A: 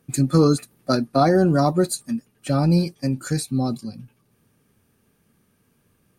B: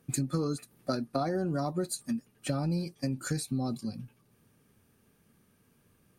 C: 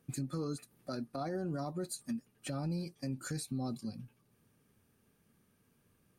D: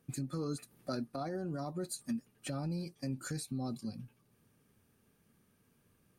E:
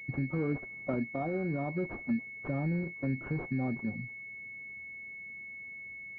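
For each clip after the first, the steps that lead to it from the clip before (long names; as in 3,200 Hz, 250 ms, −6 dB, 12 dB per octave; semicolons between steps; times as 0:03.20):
downward compressor 5 to 1, threshold −26 dBFS, peak gain reduction 13.5 dB; level −2.5 dB
brickwall limiter −24 dBFS, peak gain reduction 7.5 dB; level −5 dB
speech leveller 0.5 s
switching amplifier with a slow clock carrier 2,200 Hz; level +5.5 dB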